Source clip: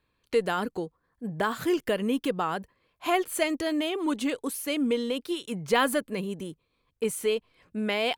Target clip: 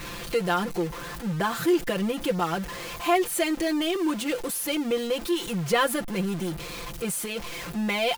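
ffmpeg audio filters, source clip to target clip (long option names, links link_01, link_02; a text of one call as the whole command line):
ffmpeg -i in.wav -af "aeval=exprs='val(0)+0.5*0.0316*sgn(val(0))':channel_layout=same,aecho=1:1:5.8:0.83,volume=-2.5dB" out.wav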